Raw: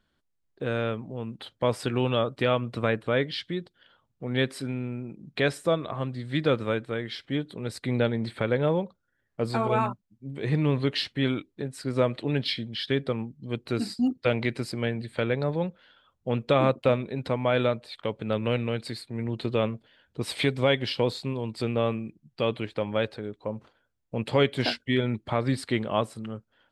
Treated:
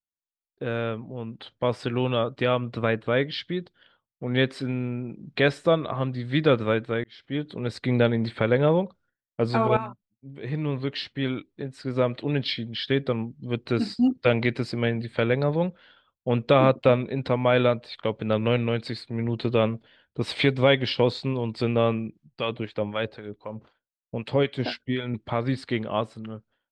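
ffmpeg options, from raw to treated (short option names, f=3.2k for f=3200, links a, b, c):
-filter_complex "[0:a]asettb=1/sr,asplit=3[a][b][c];[a]atrim=end=22.074[d];[b]atrim=start=22.07:end=25.14,asetpts=PTS-STARTPTS,afade=t=in:d=0.004:c=qsin,afade=t=out:st=3.066:d=0.004:c=qsin,acrossover=split=800[e][f];[e]aeval=exprs='val(0)*(1-0.7/2+0.7/2*cos(2*PI*3.9*n/s))':c=same[g];[f]aeval=exprs='val(0)*(1-0.7/2-0.7/2*cos(2*PI*3.9*n/s))':c=same[h];[g][h]amix=inputs=2:normalize=0[i];[c]atrim=start=25.136[j];[d][i]acrossfade=d=0.004:c1=hsin:c2=qsin[k];[k][j]acrossfade=d=0.004:c1=qsin:c2=hsin,asplit=3[l][m][n];[l]atrim=end=7.04,asetpts=PTS-STARTPTS,afade=t=out:st=7.036:d=0.004:c=hsin[o];[m]atrim=start=7.04:end=9.77,asetpts=PTS-STARTPTS,afade=t=in:d=0.51,afade=t=out:st=2.726:d=0.004:c=hsin:silence=0.251189[p];[n]atrim=start=9.77,asetpts=PTS-STARTPTS,afade=t=in:d=3.93:silence=0.251189[q];[o][p][q]concat=n=3:v=0:a=1,dynaudnorm=f=630:g=11:m=4dB,agate=range=-33dB:threshold=-52dB:ratio=3:detection=peak,lowpass=4.9k"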